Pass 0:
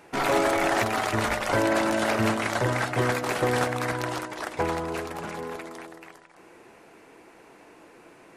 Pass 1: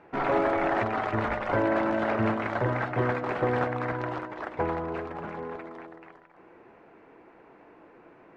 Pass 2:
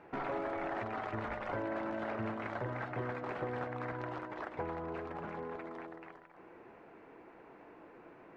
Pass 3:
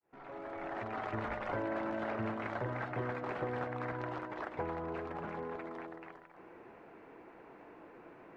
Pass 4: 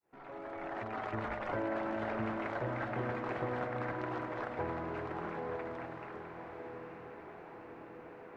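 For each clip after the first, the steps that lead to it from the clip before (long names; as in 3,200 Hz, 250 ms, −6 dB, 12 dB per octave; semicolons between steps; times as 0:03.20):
low-pass filter 1,800 Hz 12 dB per octave; level −1.5 dB
downward compressor 2.5 to 1, threshold −38 dBFS, peak gain reduction 11.5 dB; level −2 dB
fade in at the beginning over 1.12 s; level +1 dB
feedback delay with all-pass diffusion 914 ms, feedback 57%, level −7 dB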